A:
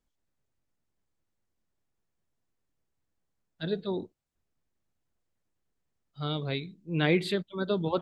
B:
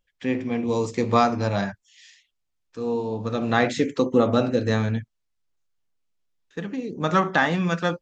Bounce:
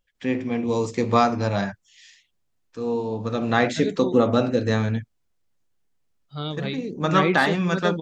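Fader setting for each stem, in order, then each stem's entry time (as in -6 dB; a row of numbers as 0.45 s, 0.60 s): +2.0 dB, +0.5 dB; 0.15 s, 0.00 s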